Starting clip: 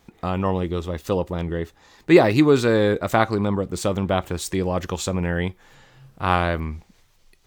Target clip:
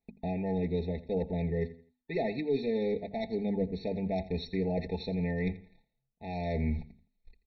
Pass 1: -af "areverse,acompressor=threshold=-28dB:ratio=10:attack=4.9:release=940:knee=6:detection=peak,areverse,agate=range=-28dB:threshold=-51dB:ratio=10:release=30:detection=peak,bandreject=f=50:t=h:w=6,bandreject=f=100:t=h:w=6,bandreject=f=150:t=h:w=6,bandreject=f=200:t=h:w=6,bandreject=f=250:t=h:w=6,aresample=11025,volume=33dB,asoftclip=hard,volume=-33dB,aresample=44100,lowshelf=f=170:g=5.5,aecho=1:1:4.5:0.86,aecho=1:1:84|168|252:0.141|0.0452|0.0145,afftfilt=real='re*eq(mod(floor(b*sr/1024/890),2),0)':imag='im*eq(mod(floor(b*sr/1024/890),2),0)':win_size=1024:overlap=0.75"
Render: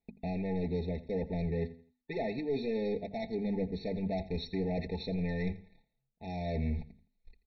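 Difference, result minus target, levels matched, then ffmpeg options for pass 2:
overloaded stage: distortion +12 dB
-af "areverse,acompressor=threshold=-28dB:ratio=10:attack=4.9:release=940:knee=6:detection=peak,areverse,agate=range=-28dB:threshold=-51dB:ratio=10:release=30:detection=peak,bandreject=f=50:t=h:w=6,bandreject=f=100:t=h:w=6,bandreject=f=150:t=h:w=6,bandreject=f=200:t=h:w=6,bandreject=f=250:t=h:w=6,aresample=11025,volume=26.5dB,asoftclip=hard,volume=-26.5dB,aresample=44100,lowshelf=f=170:g=5.5,aecho=1:1:4.5:0.86,aecho=1:1:84|168|252:0.141|0.0452|0.0145,afftfilt=real='re*eq(mod(floor(b*sr/1024/890),2),0)':imag='im*eq(mod(floor(b*sr/1024/890),2),0)':win_size=1024:overlap=0.75"

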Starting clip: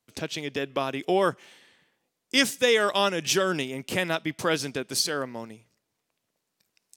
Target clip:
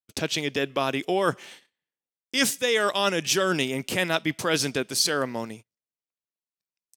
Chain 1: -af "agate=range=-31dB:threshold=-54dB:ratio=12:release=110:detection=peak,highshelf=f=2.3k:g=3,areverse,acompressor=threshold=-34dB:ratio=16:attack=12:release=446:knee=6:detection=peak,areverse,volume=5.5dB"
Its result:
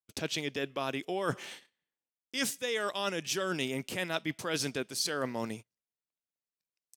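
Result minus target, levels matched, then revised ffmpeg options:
compressor: peak gain reduction +10 dB
-af "agate=range=-31dB:threshold=-54dB:ratio=12:release=110:detection=peak,highshelf=f=2.3k:g=3,areverse,acompressor=threshold=-23.5dB:ratio=16:attack=12:release=446:knee=6:detection=peak,areverse,volume=5.5dB"

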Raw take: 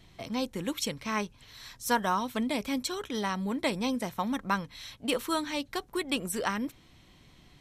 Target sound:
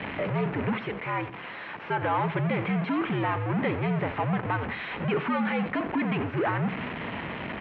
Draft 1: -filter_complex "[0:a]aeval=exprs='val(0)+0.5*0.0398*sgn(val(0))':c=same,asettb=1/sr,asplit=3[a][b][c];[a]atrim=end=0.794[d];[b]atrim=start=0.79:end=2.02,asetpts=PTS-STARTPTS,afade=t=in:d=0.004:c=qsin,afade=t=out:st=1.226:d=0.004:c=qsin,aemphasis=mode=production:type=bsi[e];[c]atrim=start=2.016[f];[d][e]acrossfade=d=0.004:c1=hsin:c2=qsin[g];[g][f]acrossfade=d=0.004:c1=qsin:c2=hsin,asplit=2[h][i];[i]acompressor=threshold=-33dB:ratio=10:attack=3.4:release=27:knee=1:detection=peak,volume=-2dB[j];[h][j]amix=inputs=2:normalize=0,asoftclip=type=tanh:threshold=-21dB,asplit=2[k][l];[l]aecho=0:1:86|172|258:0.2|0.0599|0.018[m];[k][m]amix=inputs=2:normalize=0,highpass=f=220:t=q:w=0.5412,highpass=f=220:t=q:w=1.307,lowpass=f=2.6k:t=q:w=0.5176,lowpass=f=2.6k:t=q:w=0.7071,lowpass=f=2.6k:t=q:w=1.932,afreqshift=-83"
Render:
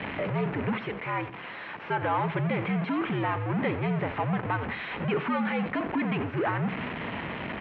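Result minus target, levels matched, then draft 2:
compressor: peak gain reduction +5.5 dB
-filter_complex "[0:a]aeval=exprs='val(0)+0.5*0.0398*sgn(val(0))':c=same,asettb=1/sr,asplit=3[a][b][c];[a]atrim=end=0.794[d];[b]atrim=start=0.79:end=2.02,asetpts=PTS-STARTPTS,afade=t=in:d=0.004:c=qsin,afade=t=out:st=1.226:d=0.004:c=qsin,aemphasis=mode=production:type=bsi[e];[c]atrim=start=2.016[f];[d][e]acrossfade=d=0.004:c1=hsin:c2=qsin[g];[g][f]acrossfade=d=0.004:c1=qsin:c2=hsin,asplit=2[h][i];[i]acompressor=threshold=-27dB:ratio=10:attack=3.4:release=27:knee=1:detection=peak,volume=-2dB[j];[h][j]amix=inputs=2:normalize=0,asoftclip=type=tanh:threshold=-21dB,asplit=2[k][l];[l]aecho=0:1:86|172|258:0.2|0.0599|0.018[m];[k][m]amix=inputs=2:normalize=0,highpass=f=220:t=q:w=0.5412,highpass=f=220:t=q:w=1.307,lowpass=f=2.6k:t=q:w=0.5176,lowpass=f=2.6k:t=q:w=0.7071,lowpass=f=2.6k:t=q:w=1.932,afreqshift=-83"

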